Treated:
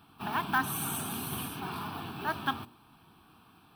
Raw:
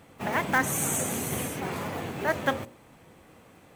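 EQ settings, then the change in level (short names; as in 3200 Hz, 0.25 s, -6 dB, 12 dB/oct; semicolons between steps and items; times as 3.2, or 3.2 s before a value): low shelf 180 Hz -7.5 dB; fixed phaser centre 2000 Hz, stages 6; 0.0 dB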